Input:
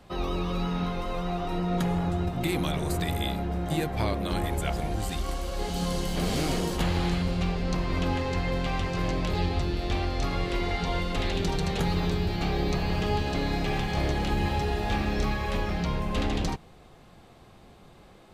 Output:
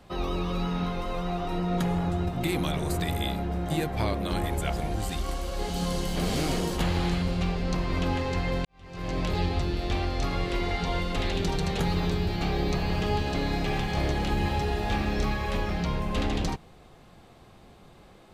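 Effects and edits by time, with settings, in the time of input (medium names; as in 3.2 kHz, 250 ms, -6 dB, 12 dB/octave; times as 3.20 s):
8.65–9.19 s: fade in quadratic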